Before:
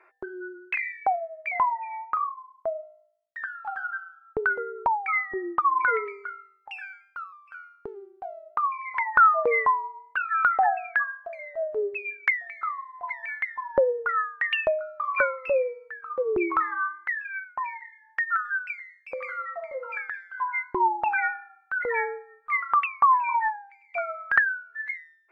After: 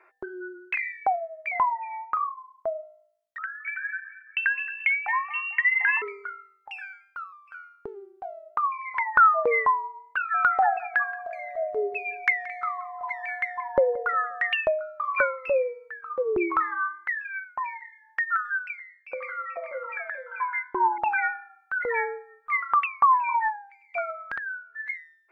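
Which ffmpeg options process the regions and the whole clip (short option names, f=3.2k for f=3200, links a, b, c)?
-filter_complex "[0:a]asettb=1/sr,asplit=3[a][b][c];[a]atrim=end=3.384[d];[b]atrim=start=3.38:end=6.02,asetpts=PTS-STARTPTS,afade=t=in:d=0.004:c=qsin,afade=t=out:st=2.636:d=0.004:c=qsin,aecho=1:1:222|444|666|888:0.158|0.0777|0.0381|0.0186,atrim=end_sample=116424,lowpass=f=2.6k:t=q:w=0.5098,lowpass=f=2.6k:t=q:w=0.6013,lowpass=f=2.6k:t=q:w=0.9,lowpass=f=2.6k:t=q:w=2.563,afreqshift=-3100[e];[c]atrim=start=6.016[f];[d][e]acrossfade=d=0.004:c1=hsin:c2=qsin[g];[g][f]acrossfade=d=0.004:c1=qsin:c2=hsin,asettb=1/sr,asplit=3[h][i][j];[h]atrim=end=10.344[k];[i]atrim=start=10.34:end=14.53,asetpts=PTS-STARTPTS,afade=t=in:d=0.004:c=qsin,afade=t=out:st=4.186:d=0.004:c=qsin,aeval=exprs='val(0)+0.0158*sin(2*PI*720*n/s)':c=same,bass=f=250:g=1,treble=f=4k:g=6,aecho=1:1:176|352|528:0.112|0.0381|0.013,atrim=end_sample=184779[l];[j]atrim=start=14.526[m];[k][l]acrossfade=d=0.004:c1=hsin:c2=qsin[n];[n][m]acrossfade=d=0.004:c1=qsin:c2=hsin,asettb=1/sr,asplit=3[o][p][q];[o]atrim=end=18.684[r];[p]atrim=start=18.68:end=20.98,asetpts=PTS-STARTPTS,afade=t=in:d=0.004:c=qsin,afade=t=out:st=2.296:d=0.004:c=qsin,bass=f=250:g=-12,treble=f=4k:g=-13,aecho=1:1:435:0.447,atrim=end_sample=101430[s];[q]atrim=start=20.976[t];[r][s]acrossfade=d=0.004:c1=hsin:c2=qsin[u];[u][t]acrossfade=d=0.004:c1=qsin:c2=hsin,asettb=1/sr,asplit=3[v][w][x];[v]atrim=end=24.104[y];[w]atrim=start=24.1:end=24.86,asetpts=PTS-STARTPTS,afade=t=in:d=0.004:c=qsin,afade=t=out:st=0.756:d=0.004:c=qsin,lowpass=f=2.3k:p=1,bandreject=f=50:t=h:w=6,bandreject=f=100:t=h:w=6,bandreject=f=150:t=h:w=6,acompressor=threshold=-29dB:ratio=12:attack=3.2:release=140:knee=1:detection=peak[z];[x]atrim=start=24.856[aa];[y][z]acrossfade=d=0.004:c1=hsin:c2=qsin[ab];[ab][aa]acrossfade=d=0.004:c1=qsin:c2=hsin"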